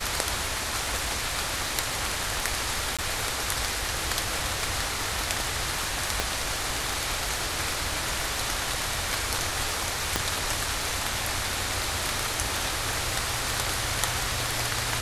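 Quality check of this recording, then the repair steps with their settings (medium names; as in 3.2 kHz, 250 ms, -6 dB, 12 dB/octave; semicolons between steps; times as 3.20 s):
crackle 41 per s -32 dBFS
2.97–2.99 s: dropout 16 ms
6.20 s: pop -9 dBFS
10.16 s: pop -7 dBFS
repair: de-click; interpolate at 2.97 s, 16 ms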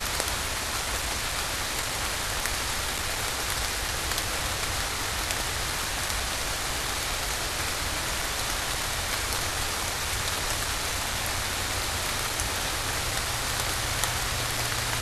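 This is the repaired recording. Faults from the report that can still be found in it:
nothing left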